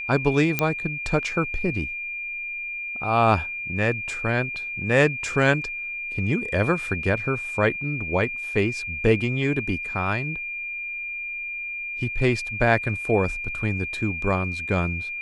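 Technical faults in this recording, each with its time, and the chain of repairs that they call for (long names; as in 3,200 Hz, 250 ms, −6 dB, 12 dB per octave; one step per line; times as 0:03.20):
whistle 2,400 Hz −29 dBFS
0:00.59: click −6 dBFS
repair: click removal
notch filter 2,400 Hz, Q 30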